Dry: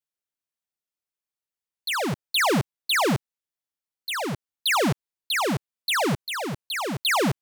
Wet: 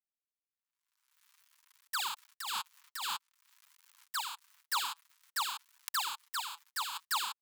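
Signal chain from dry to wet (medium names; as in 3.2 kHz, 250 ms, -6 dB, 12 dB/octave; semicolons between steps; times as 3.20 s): dead-time distortion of 0.24 ms; steep high-pass 920 Hz 72 dB/octave; in parallel at -2 dB: peak limiter -28 dBFS, peak gain reduction 11.5 dB; 1.99–4.10 s: on the sum: compressor with a negative ratio -32 dBFS, ratio -0.5; flange 0.52 Hz, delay 1.1 ms, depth 6.4 ms, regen -25%; saturation -25 dBFS, distortion -16 dB; swell ahead of each attack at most 51 dB/s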